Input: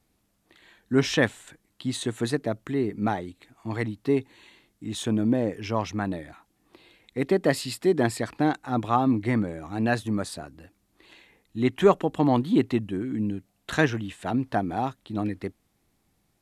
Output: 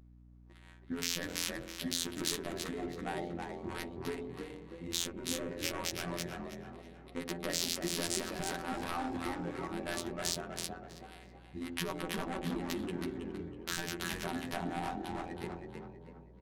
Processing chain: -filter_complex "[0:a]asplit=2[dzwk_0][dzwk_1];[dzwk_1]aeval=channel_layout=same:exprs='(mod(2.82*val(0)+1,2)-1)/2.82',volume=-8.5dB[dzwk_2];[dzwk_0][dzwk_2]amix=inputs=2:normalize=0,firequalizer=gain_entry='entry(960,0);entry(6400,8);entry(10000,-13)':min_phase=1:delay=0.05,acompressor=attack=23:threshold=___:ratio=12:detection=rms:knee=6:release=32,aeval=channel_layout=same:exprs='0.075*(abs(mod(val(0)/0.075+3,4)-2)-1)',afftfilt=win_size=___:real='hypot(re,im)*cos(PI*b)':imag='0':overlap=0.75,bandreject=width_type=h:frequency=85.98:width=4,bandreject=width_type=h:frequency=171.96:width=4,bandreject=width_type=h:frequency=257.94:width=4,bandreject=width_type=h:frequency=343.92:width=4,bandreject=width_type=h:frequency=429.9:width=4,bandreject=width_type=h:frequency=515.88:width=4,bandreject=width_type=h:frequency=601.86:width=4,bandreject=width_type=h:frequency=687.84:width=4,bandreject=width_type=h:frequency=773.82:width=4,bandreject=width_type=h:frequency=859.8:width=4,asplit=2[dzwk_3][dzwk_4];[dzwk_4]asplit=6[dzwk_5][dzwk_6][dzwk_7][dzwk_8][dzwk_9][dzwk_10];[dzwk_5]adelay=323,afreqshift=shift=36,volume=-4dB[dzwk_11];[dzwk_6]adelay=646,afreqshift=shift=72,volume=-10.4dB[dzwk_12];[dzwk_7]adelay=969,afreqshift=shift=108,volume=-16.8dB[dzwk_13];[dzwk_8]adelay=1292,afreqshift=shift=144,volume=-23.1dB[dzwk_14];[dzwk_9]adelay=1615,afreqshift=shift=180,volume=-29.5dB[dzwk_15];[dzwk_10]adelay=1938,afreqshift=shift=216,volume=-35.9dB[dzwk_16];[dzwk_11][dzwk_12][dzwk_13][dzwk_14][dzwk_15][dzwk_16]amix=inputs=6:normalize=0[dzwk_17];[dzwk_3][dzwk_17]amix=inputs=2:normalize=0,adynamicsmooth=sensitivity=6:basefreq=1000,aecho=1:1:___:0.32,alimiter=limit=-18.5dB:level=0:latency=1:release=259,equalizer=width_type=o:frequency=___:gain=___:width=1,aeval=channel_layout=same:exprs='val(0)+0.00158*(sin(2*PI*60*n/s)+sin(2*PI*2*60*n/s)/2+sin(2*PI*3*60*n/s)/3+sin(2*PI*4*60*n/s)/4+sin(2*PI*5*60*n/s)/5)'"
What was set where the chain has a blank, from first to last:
-30dB, 2048, 5.3, 11000, 13.5